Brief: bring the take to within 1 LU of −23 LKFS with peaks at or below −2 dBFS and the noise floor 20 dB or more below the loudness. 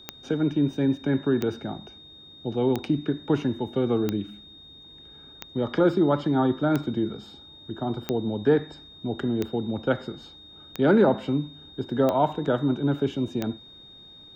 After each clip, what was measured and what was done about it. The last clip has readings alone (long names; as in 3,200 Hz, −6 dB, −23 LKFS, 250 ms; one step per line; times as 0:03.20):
number of clicks 11; interfering tone 3,700 Hz; level of the tone −46 dBFS; integrated loudness −25.5 LKFS; sample peak −8.0 dBFS; target loudness −23.0 LKFS
→ click removal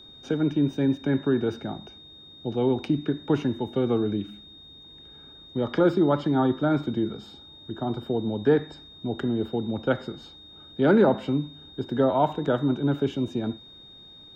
number of clicks 0; interfering tone 3,700 Hz; level of the tone −46 dBFS
→ notch filter 3,700 Hz, Q 30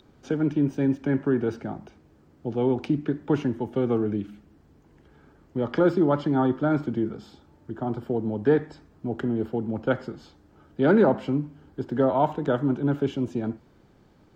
interfering tone none found; integrated loudness −25.5 LKFS; sample peak −8.5 dBFS; target loudness −23.0 LKFS
→ level +2.5 dB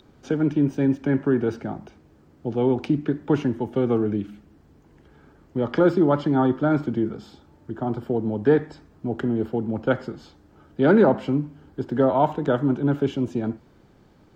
integrated loudness −23.0 LKFS; sample peak −6.0 dBFS; background noise floor −55 dBFS